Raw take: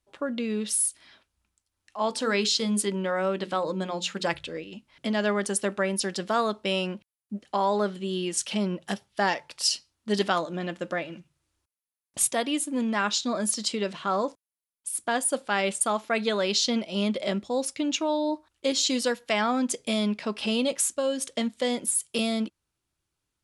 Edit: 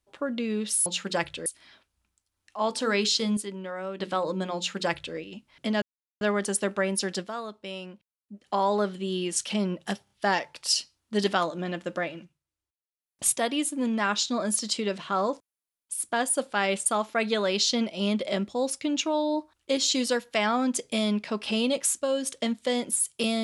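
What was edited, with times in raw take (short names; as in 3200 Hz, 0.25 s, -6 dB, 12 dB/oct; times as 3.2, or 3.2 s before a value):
2.77–3.4 gain -8 dB
3.96–4.56 copy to 0.86
5.22 insert silence 0.39 s
6.21–7.5 dip -10.5 dB, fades 0.45 s exponential
9.05 stutter 0.03 s, 3 plays
11.06–12.19 dip -14.5 dB, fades 0.31 s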